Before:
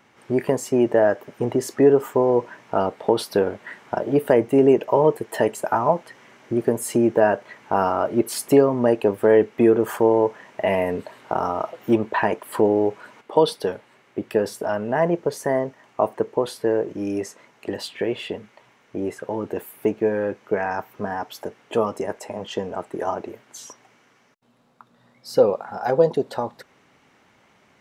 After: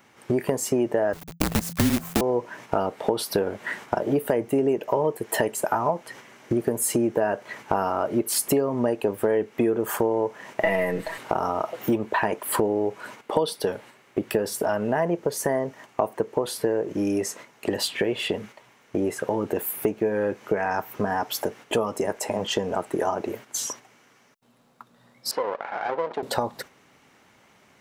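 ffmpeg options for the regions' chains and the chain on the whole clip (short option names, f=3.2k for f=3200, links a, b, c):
-filter_complex "[0:a]asettb=1/sr,asplit=3[a][b][c];[a]atrim=end=1.134[d];[b]atrim=start=1.13:end=2.21,asetpts=PTS-STARTPTS,afade=t=in:d=0.004:c=qsin,afade=t=out:st=1.076:d=0.004:c=qsin,bandreject=f=200:w=5.4,acrusher=bits=4:dc=4:mix=0:aa=0.000001,afreqshift=-170[e];[c]atrim=start=2.206[f];[d][e]acrossfade=d=0.004:c1=hsin:c2=qsin[g];[g][f]acrossfade=d=0.004:c1=qsin:c2=hsin,asettb=1/sr,asplit=3[h][i][j];[h]atrim=end=10.634[k];[i]atrim=start=10.63:end=11.18,asetpts=PTS-STARTPTS,afade=t=in:d=0.004:c=qsin,afade=t=out:st=0.546:d=0.004:c=qsin,aeval=exprs='if(lt(val(0),0),0.708*val(0),val(0))':c=same,equalizer=f=1.9k:w=5.6:g=10,aecho=1:1:6.1:0.97,atrim=end_sample=24255[l];[j]atrim=start=11.176[m];[k][l]acrossfade=d=0.004:c1=hsin:c2=qsin[n];[n][m]acrossfade=d=0.004:c1=qsin:c2=hsin,asettb=1/sr,asplit=3[o][p][q];[o]atrim=end=25.314[r];[p]atrim=start=25.31:end=26.23,asetpts=PTS-STARTPTS,afade=t=in:d=0.004:c=qsin,afade=t=out:st=0.916:d=0.004:c=qsin,acompressor=threshold=-27dB:ratio=2:attack=3.2:release=140:knee=1:detection=peak,aeval=exprs='max(val(0),0)':c=same,highpass=420,lowpass=2.5k[s];[q]atrim=start=26.226[t];[r][s]acrossfade=d=0.004:c1=hsin:c2=qsin[u];[u][t]acrossfade=d=0.004:c1=qsin:c2=hsin,highshelf=f=7.4k:g=9.5,agate=range=-7dB:threshold=-46dB:ratio=16:detection=peak,acompressor=threshold=-29dB:ratio=4,volume=7dB"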